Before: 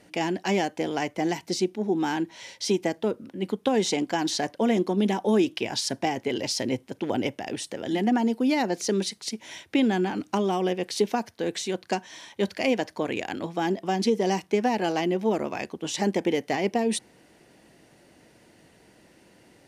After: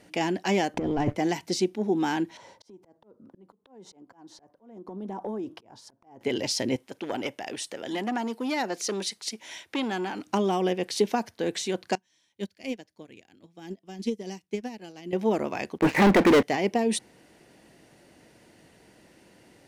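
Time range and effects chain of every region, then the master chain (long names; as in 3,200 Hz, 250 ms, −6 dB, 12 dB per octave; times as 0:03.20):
0:00.74–0:01.16: leveller curve on the samples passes 2 + spectral tilt −4 dB per octave + compressor whose output falls as the input rises −23 dBFS, ratio −0.5
0:02.37–0:06.21: high shelf with overshoot 1,600 Hz −12.5 dB, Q 1.5 + downward compressor 12 to 1, threshold −29 dBFS + volume swells 620 ms
0:06.76–0:10.27: low-shelf EQ 280 Hz −11.5 dB + saturating transformer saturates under 830 Hz
0:11.95–0:15.13: parametric band 910 Hz −10.5 dB 2.5 octaves + expander for the loud parts 2.5 to 1, over −37 dBFS
0:15.78–0:16.43: Butterworth low-pass 2,500 Hz 96 dB per octave + low-shelf EQ 79 Hz −9 dB + leveller curve on the samples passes 5
whole clip: no processing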